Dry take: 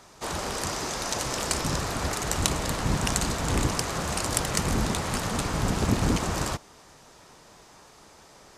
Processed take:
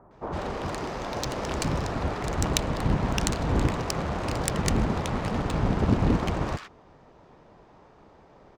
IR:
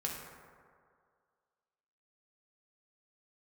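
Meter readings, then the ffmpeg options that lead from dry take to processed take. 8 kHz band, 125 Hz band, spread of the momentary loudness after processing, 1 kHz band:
−7.0 dB, +2.0 dB, 8 LU, −0.5 dB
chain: -filter_complex "[0:a]acrossover=split=1400[link_01][link_02];[link_02]adelay=110[link_03];[link_01][link_03]amix=inputs=2:normalize=0,adynamicsmooth=sensitivity=2:basefreq=1600,volume=2dB"

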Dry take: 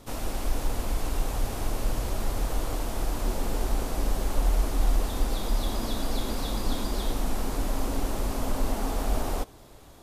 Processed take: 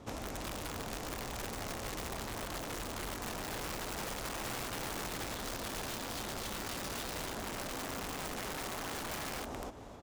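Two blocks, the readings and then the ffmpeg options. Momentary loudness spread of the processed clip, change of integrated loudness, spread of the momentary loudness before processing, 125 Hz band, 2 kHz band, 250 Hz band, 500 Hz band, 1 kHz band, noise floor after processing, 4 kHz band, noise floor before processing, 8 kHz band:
2 LU, −8.0 dB, 4 LU, −13.5 dB, 0.0 dB, −9.5 dB, −7.5 dB, −5.5 dB, −43 dBFS, −3.5 dB, −49 dBFS, −3.5 dB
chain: -filter_complex "[0:a]aexciter=amount=1.6:drive=7.5:freq=5900,adynamicsmooth=sensitivity=8:basefreq=3200,highpass=64,asplit=2[link_01][link_02];[link_02]aecho=0:1:265|530|795:0.596|0.0953|0.0152[link_03];[link_01][link_03]amix=inputs=2:normalize=0,aeval=exprs='(mod(22.4*val(0)+1,2)-1)/22.4':channel_layout=same,acompressor=threshold=-38dB:ratio=6"

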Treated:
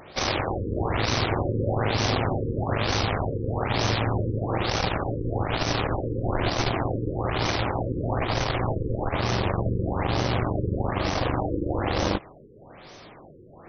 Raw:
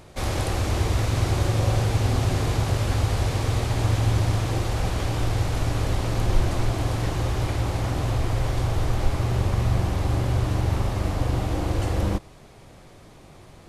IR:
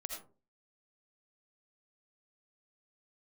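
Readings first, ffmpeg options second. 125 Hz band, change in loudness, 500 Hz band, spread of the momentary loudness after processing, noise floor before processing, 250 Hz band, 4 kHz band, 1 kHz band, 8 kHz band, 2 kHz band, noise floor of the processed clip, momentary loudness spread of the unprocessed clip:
−5.0 dB, −1.5 dB, +3.5 dB, 4 LU, −48 dBFS, +1.5 dB, +4.0 dB, +3.5 dB, −3.0 dB, +3.5 dB, −48 dBFS, 4 LU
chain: -filter_complex "[0:a]aeval=exprs='0.422*(cos(1*acos(clip(val(0)/0.422,-1,1)))-cos(1*PI/2))+0.0668*(cos(4*acos(clip(val(0)/0.422,-1,1)))-cos(4*PI/2))+0.0841*(cos(6*acos(clip(val(0)/0.422,-1,1)))-cos(6*PI/2))':channel_layout=same,aemphasis=mode=production:type=bsi,asplit=2[link_01][link_02];[link_02]alimiter=limit=-18dB:level=0:latency=1:release=79,volume=-1dB[link_03];[link_01][link_03]amix=inputs=2:normalize=0,afftfilt=real='re*lt(b*sr/1024,510*pow(6400/510,0.5+0.5*sin(2*PI*1.1*pts/sr)))':imag='im*lt(b*sr/1024,510*pow(6400/510,0.5+0.5*sin(2*PI*1.1*pts/sr)))':win_size=1024:overlap=0.75"

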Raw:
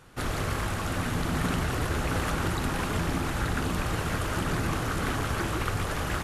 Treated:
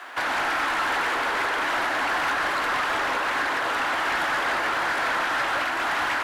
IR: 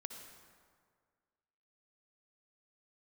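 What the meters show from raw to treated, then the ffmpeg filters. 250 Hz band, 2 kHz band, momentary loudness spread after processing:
−6.5 dB, +10.5 dB, 1 LU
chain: -filter_complex "[0:a]asplit=2[link_01][link_02];[link_02]highpass=frequency=720:poles=1,volume=13dB,asoftclip=type=tanh:threshold=-14.5dB[link_03];[link_01][link_03]amix=inputs=2:normalize=0,lowpass=frequency=2200:poles=1,volume=-6dB,alimiter=limit=-23dB:level=0:latency=1:release=489,afreqshift=230,lowshelf=frequency=600:width_type=q:width=1.5:gain=-8,acrusher=bits=11:mix=0:aa=0.000001,asoftclip=type=tanh:threshold=-32dB,asplit=2[link_04][link_05];[1:a]atrim=start_sample=2205,lowpass=4500[link_06];[link_05][link_06]afir=irnorm=-1:irlink=0,volume=-1.5dB[link_07];[link_04][link_07]amix=inputs=2:normalize=0,volume=8dB"

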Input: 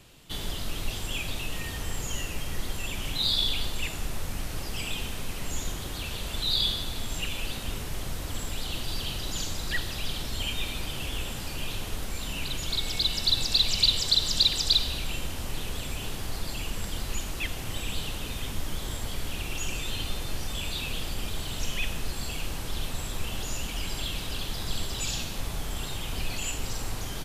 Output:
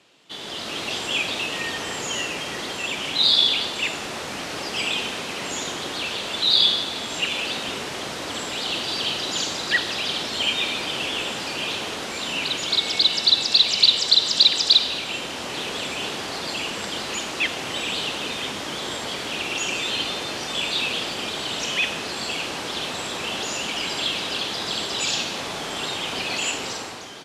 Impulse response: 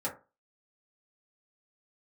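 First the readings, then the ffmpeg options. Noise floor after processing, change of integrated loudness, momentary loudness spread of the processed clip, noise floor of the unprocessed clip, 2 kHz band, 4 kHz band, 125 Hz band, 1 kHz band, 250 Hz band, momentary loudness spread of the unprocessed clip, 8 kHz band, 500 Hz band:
−32 dBFS, +8.0 dB, 13 LU, −36 dBFS, +10.5 dB, +8.5 dB, −6.5 dB, +10.5 dB, +5.5 dB, 12 LU, +4.5 dB, +10.0 dB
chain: -af "dynaudnorm=framelen=100:gausssize=11:maxgain=11dB,highpass=300,lowpass=5900"

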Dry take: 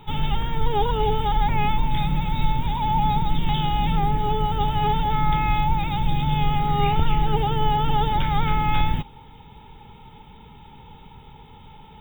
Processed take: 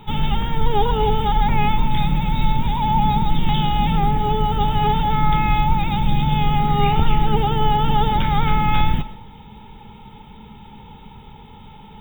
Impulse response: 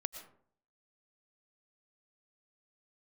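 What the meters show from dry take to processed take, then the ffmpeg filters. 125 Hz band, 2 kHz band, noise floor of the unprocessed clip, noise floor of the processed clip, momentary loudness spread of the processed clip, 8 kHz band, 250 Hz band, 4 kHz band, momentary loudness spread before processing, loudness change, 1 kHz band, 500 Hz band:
+3.5 dB, +3.5 dB, −46 dBFS, −42 dBFS, 3 LU, can't be measured, +5.0 dB, +3.5 dB, 3 LU, +3.5 dB, +3.0 dB, +3.5 dB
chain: -filter_complex "[0:a]equalizer=frequency=210:width=7.6:gain=9.5,asplit=2[link_01][link_02];[1:a]atrim=start_sample=2205[link_03];[link_02][link_03]afir=irnorm=-1:irlink=0,volume=0.5dB[link_04];[link_01][link_04]amix=inputs=2:normalize=0,volume=-2.5dB"

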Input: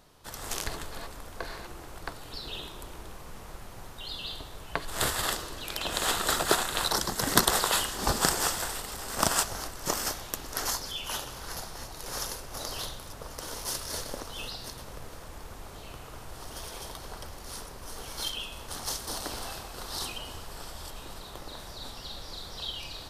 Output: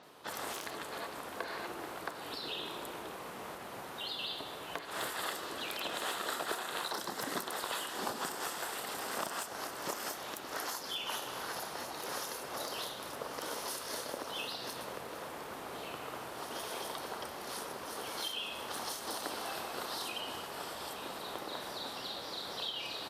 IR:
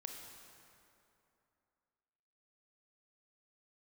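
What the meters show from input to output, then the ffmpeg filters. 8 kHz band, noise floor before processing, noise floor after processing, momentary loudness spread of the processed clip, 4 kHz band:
−11.0 dB, −45 dBFS, −45 dBFS, 6 LU, −6.0 dB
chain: -filter_complex "[0:a]acompressor=threshold=-38dB:ratio=6,highpass=250,asplit=2[link_01][link_02];[1:a]atrim=start_sample=2205,lowpass=4900[link_03];[link_02][link_03]afir=irnorm=-1:irlink=0,volume=-0.5dB[link_04];[link_01][link_04]amix=inputs=2:normalize=0,volume=27.5dB,asoftclip=hard,volume=-27.5dB,acrossover=split=6000[link_05][link_06];[link_06]adelay=30[link_07];[link_05][link_07]amix=inputs=2:normalize=0,volume=1.5dB" -ar 48000 -c:a libopus -b:a 96k

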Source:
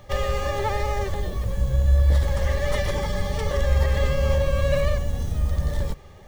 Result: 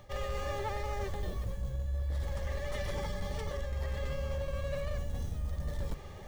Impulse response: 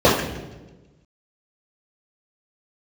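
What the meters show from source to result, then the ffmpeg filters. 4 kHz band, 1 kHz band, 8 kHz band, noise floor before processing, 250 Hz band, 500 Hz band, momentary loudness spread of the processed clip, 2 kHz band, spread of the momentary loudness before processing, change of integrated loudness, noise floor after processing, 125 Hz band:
−12.0 dB, −11.5 dB, −12.0 dB, −44 dBFS, −11.5 dB, −12.5 dB, 2 LU, −12.5 dB, 7 LU, −13.0 dB, −45 dBFS, −13.5 dB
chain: -af "areverse,acompressor=threshold=-31dB:ratio=12,areverse,volume=28.5dB,asoftclip=hard,volume=-28.5dB"

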